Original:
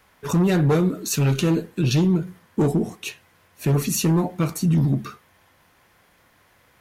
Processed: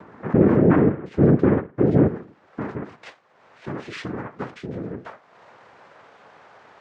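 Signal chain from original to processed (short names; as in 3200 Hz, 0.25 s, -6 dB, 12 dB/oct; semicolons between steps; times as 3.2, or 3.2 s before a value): tilt -2.5 dB/oct, from 2.06 s +4 dB/oct; upward compressor, threshold -21 dBFS; noise vocoder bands 3; LPF 1300 Hz 12 dB/oct; gain -3 dB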